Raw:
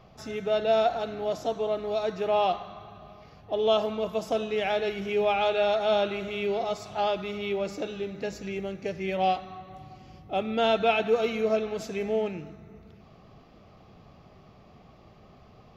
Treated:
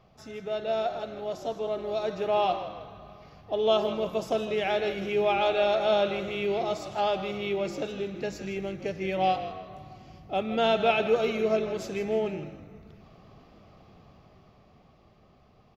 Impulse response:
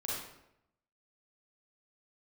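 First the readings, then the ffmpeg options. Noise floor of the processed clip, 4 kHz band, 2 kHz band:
-59 dBFS, -0.5 dB, 0.0 dB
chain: -filter_complex "[0:a]dynaudnorm=f=110:g=31:m=2,asplit=2[s0][s1];[s1]asplit=3[s2][s3][s4];[s2]adelay=159,afreqshift=-49,volume=0.251[s5];[s3]adelay=318,afreqshift=-98,volume=0.0851[s6];[s4]adelay=477,afreqshift=-147,volume=0.0292[s7];[s5][s6][s7]amix=inputs=3:normalize=0[s8];[s0][s8]amix=inputs=2:normalize=0,volume=0.501"

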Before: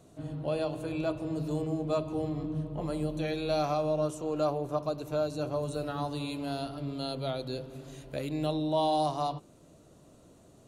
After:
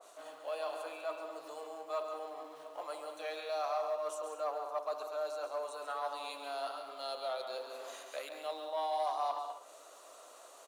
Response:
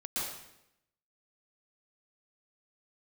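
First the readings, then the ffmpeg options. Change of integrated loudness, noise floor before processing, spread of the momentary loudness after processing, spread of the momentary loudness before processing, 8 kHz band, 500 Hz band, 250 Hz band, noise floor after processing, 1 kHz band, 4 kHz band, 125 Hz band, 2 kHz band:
-7.0 dB, -58 dBFS, 12 LU, 8 LU, -2.5 dB, -6.5 dB, -25.0 dB, -56 dBFS, -3.0 dB, -5.5 dB, under -40 dB, -2.5 dB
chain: -filter_complex "[0:a]areverse,acompressor=threshold=0.01:ratio=5,areverse,aecho=1:1:138|194|248:0.398|0.282|0.126,asplit=2[s0][s1];[s1]acrusher=bits=4:mode=log:mix=0:aa=0.000001,volume=0.251[s2];[s0][s2]amix=inputs=2:normalize=0,equalizer=f=1200:t=o:w=0.43:g=5.5,asoftclip=type=tanh:threshold=0.0376,highpass=f=600:w=0.5412,highpass=f=600:w=1.3066,adynamicequalizer=threshold=0.00141:dfrequency=1700:dqfactor=0.7:tfrequency=1700:tqfactor=0.7:attack=5:release=100:ratio=0.375:range=2.5:mode=cutabove:tftype=highshelf,volume=2"

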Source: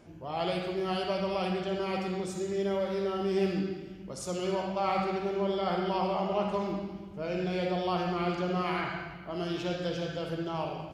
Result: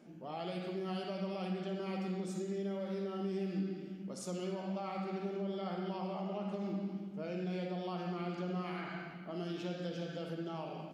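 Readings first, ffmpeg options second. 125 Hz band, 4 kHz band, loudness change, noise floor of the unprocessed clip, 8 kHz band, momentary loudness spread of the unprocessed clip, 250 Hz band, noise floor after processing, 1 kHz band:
-5.0 dB, -10.5 dB, -8.0 dB, -44 dBFS, -7.5 dB, 7 LU, -5.0 dB, -47 dBFS, -11.5 dB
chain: -af "acompressor=threshold=0.0224:ratio=4,lowshelf=f=130:t=q:w=3:g=-14,bandreject=f=1000:w=13,volume=0.501"

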